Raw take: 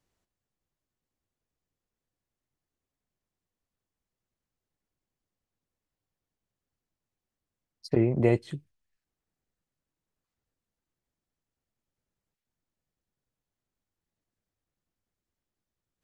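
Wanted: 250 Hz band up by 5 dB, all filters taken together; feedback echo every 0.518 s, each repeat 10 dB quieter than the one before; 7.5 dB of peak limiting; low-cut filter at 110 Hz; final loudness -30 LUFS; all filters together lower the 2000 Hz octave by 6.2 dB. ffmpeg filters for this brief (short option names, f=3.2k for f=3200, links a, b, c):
-af "highpass=110,equalizer=f=250:t=o:g=7.5,equalizer=f=2k:t=o:g=-7,alimiter=limit=-15dB:level=0:latency=1,aecho=1:1:518|1036|1554|2072:0.316|0.101|0.0324|0.0104,volume=-1.5dB"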